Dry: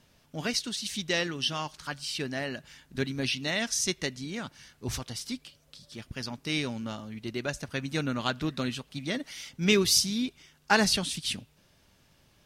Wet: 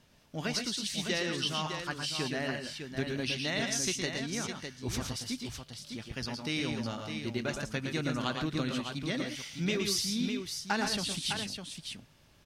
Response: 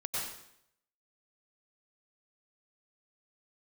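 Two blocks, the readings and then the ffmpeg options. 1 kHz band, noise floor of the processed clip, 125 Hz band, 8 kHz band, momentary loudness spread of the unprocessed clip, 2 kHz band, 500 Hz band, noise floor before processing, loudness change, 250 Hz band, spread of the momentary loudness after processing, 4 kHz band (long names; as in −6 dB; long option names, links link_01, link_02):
−3.5 dB, −61 dBFS, −1.0 dB, −4.0 dB, 15 LU, −3.5 dB, −3.5 dB, −64 dBFS, −3.5 dB, −2.0 dB, 9 LU, −3.0 dB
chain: -filter_complex "[0:a]highshelf=frequency=9800:gain=-4,acompressor=threshold=-28dB:ratio=5,asplit=2[link_01][link_02];[link_02]aecho=0:1:114|134|606:0.531|0.299|0.447[link_03];[link_01][link_03]amix=inputs=2:normalize=0,volume=-1dB"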